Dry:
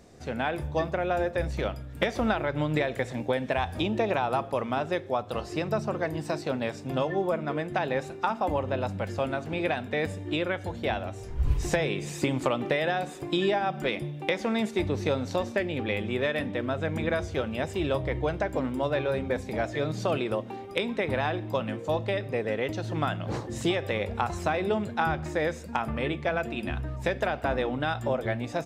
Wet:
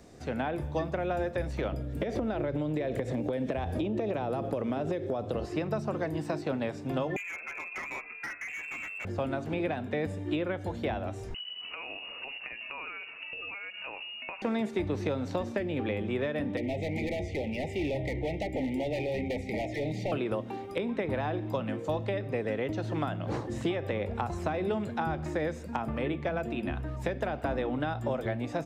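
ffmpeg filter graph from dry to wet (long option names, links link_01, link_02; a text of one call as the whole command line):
ffmpeg -i in.wav -filter_complex "[0:a]asettb=1/sr,asplit=3[link_01][link_02][link_03];[link_01]atrim=end=1.724[link_04];[link_02]atrim=start=1.72:end=5.45,asetpts=PTS-STARTPTS,afade=type=in:duration=0.004:curve=qsin,afade=type=out:start_time=3.726:duration=0.004:curve=qsin,lowshelf=frequency=720:width_type=q:width=1.5:gain=7.5,acompressor=threshold=-25dB:ratio=10:attack=3.2:release=140:knee=1:detection=peak[link_05];[link_03]atrim=start=5.446[link_06];[link_04][link_05]acrossfade=duration=0.004:curve1=hsin:curve2=qsin[link_07];[link_07][link_06]acrossfade=duration=0.004:curve1=qsin:curve2=hsin,asettb=1/sr,asplit=3[link_08][link_09][link_10];[link_08]atrim=end=7.164[link_11];[link_09]atrim=start=7.16:end=9.05,asetpts=PTS-STARTPTS,afade=type=in:duration=0.004:curve=qsin,afade=type=out:start_time=1.886:duration=0.004:curve=qsin,lowpass=frequency=2400:width_type=q:width=0.5098,lowpass=frequency=2400:width_type=q:width=0.6013,lowpass=frequency=2400:width_type=q:width=0.9,lowpass=frequency=2400:width_type=q:width=2.563,afreqshift=-2800,asplit=2[link_12][link_13];[link_13]adelay=13,volume=-4.5dB[link_14];[link_12][link_14]amix=inputs=2:normalize=0,atrim=end_sample=83349,volume=26dB,asoftclip=hard,volume=-26dB[link_15];[link_10]atrim=start=9.046[link_16];[link_11][link_15]acrossfade=duration=0.004:curve1=hsin:curve2=qsin[link_17];[link_17][link_16]acrossfade=duration=0.004:curve1=qsin:curve2=hsin,asettb=1/sr,asplit=3[link_18][link_19][link_20];[link_18]atrim=end=11.344[link_21];[link_19]atrim=start=11.34:end=14.42,asetpts=PTS-STARTPTS,afade=type=in:duration=0.004:curve=qsin,afade=type=out:start_time=3.076:duration=0.004:curve=qsin,acompressor=threshold=-33dB:ratio=3:attack=3.2:release=140:knee=1:detection=peak,lowpass=frequency=2600:width_type=q:width=0.5098,lowpass=frequency=2600:width_type=q:width=0.6013,lowpass=frequency=2600:width_type=q:width=0.9,lowpass=frequency=2600:width_type=q:width=2.563,afreqshift=-3000[link_22];[link_20]atrim=start=14.416[link_23];[link_21][link_22]acrossfade=duration=0.004:curve1=hsin:curve2=qsin[link_24];[link_24][link_23]acrossfade=duration=0.004:curve1=qsin:curve2=hsin,asettb=1/sr,asplit=3[link_25][link_26][link_27];[link_25]atrim=end=16.574[link_28];[link_26]atrim=start=16.57:end=20.12,asetpts=PTS-STARTPTS,afade=type=in:duration=0.004:curve=qsin,afade=type=out:start_time=3.546:duration=0.004:curve=qsin,equalizer=frequency=2000:width=1.6:gain=11.5,asoftclip=type=hard:threshold=-26.5dB,asuperstop=centerf=1300:order=20:qfactor=1.3[link_29];[link_27]atrim=start=20.116[link_30];[link_28][link_29]acrossfade=duration=0.004:curve1=hsin:curve2=qsin[link_31];[link_31][link_30]acrossfade=duration=0.004:curve1=qsin:curve2=hsin,equalizer=frequency=290:width=4:gain=3,acrossover=split=280|940|3000[link_32][link_33][link_34][link_35];[link_32]acompressor=threshold=-33dB:ratio=4[link_36];[link_33]acompressor=threshold=-31dB:ratio=4[link_37];[link_34]acompressor=threshold=-41dB:ratio=4[link_38];[link_35]acompressor=threshold=-55dB:ratio=4[link_39];[link_36][link_37][link_38][link_39]amix=inputs=4:normalize=0" out.wav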